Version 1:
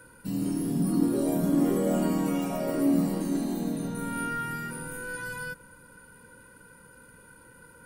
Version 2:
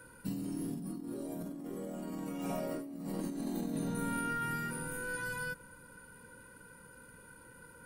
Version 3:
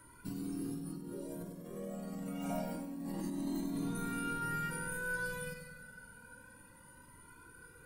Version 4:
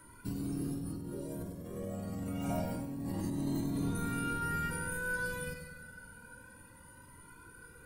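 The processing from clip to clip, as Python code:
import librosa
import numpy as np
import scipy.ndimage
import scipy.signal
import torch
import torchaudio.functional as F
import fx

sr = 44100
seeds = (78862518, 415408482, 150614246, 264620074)

y1 = fx.over_compress(x, sr, threshold_db=-32.0, ratio=-1.0)
y1 = F.gain(torch.from_numpy(y1), -6.5).numpy()
y2 = fx.echo_feedback(y1, sr, ms=97, feedback_pct=60, wet_db=-7.5)
y2 = fx.comb_cascade(y2, sr, direction='rising', hz=0.28)
y2 = F.gain(torch.from_numpy(y2), 2.0).numpy()
y3 = fx.octave_divider(y2, sr, octaves=1, level_db=-3.0)
y3 = F.gain(torch.from_numpy(y3), 2.0).numpy()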